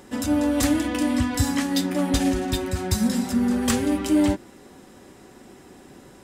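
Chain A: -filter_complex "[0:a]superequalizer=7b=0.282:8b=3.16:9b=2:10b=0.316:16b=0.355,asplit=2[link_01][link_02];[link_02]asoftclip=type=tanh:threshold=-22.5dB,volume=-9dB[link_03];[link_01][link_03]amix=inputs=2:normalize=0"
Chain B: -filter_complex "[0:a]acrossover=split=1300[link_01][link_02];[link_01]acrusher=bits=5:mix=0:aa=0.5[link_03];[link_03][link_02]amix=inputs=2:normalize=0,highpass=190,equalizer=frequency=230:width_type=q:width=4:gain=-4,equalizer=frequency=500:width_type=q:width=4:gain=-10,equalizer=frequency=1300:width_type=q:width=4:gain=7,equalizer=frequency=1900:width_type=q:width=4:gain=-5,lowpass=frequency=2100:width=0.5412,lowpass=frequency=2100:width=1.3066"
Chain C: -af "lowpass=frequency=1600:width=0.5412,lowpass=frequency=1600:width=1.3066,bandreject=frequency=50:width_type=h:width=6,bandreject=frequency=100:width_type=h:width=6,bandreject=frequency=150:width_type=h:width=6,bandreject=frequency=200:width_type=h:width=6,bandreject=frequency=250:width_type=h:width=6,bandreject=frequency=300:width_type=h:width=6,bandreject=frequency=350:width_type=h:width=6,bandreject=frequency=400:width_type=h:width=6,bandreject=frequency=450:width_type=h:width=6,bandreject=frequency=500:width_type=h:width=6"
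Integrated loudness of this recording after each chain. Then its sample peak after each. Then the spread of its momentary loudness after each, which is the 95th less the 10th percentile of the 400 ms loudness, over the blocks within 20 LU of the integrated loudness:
−20.0, −26.5, −24.5 LKFS; −6.5, −13.0, −10.0 dBFS; 4, 6, 4 LU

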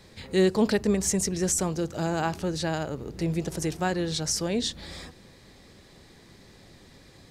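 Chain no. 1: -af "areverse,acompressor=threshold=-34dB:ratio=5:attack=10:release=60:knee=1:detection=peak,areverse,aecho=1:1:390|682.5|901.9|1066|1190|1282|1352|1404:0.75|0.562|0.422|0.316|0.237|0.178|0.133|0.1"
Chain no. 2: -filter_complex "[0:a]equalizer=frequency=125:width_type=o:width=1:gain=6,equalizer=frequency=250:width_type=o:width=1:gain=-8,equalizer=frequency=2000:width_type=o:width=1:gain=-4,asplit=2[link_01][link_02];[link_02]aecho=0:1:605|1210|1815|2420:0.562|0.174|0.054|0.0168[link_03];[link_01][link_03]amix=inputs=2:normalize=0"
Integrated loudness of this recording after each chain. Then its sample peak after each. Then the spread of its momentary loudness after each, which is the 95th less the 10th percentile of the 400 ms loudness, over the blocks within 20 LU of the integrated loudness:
−32.0, −27.5 LKFS; −17.0, −12.0 dBFS; 17, 12 LU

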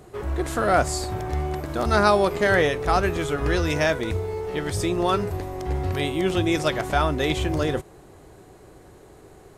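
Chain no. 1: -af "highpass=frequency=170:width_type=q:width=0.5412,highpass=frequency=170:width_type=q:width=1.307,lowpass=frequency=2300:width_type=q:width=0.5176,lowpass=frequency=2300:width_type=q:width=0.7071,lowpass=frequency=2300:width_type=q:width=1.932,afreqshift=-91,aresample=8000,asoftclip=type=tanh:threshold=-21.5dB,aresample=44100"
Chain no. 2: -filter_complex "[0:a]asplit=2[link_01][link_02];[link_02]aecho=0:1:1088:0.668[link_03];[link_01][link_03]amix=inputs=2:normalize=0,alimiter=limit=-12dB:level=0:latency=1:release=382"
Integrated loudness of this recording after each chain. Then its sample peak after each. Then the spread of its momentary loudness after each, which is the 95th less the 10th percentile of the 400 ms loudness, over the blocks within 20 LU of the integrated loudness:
−28.5, −25.0 LKFS; −19.0, −12.0 dBFS; 7, 6 LU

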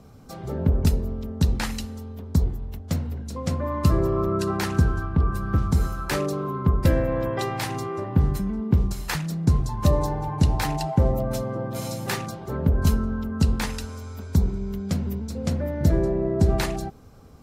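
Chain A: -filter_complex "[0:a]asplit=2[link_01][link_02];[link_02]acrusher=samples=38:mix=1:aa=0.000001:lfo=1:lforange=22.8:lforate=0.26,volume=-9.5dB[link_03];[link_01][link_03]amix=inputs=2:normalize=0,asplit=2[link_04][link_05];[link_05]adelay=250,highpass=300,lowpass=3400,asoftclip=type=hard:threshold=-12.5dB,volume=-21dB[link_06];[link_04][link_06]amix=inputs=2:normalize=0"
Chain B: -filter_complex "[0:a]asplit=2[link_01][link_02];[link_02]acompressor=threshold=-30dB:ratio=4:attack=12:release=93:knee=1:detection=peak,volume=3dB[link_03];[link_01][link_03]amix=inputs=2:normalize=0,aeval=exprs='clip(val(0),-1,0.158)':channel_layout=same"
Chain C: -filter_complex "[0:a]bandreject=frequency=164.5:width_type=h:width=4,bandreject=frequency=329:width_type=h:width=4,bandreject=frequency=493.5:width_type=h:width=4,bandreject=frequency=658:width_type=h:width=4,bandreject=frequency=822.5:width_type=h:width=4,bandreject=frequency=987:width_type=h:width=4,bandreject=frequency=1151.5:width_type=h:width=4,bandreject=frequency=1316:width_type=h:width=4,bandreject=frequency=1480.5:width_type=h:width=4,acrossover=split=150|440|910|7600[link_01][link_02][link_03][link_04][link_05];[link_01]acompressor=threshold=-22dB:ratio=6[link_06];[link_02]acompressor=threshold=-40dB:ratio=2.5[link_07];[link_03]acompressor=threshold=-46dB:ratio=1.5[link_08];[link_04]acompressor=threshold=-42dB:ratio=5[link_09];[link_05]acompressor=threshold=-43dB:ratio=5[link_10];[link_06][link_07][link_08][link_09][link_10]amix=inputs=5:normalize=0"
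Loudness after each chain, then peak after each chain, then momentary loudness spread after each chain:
−23.0, −22.0, −30.0 LKFS; −4.5, −4.5, −12.5 dBFS; 9, 5, 6 LU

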